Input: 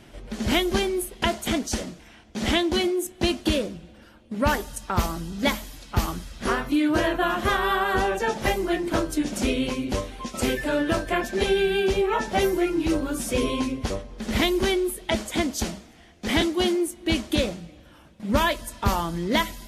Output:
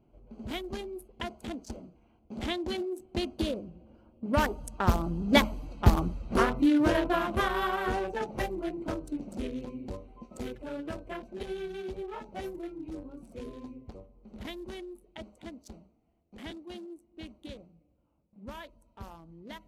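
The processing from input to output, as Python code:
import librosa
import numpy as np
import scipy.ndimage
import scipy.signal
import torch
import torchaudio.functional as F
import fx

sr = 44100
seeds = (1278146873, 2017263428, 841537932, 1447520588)

y = fx.wiener(x, sr, points=25)
y = fx.doppler_pass(y, sr, speed_mps=7, closest_m=5.1, pass_at_s=5.76)
y = y * librosa.db_to_amplitude(3.5)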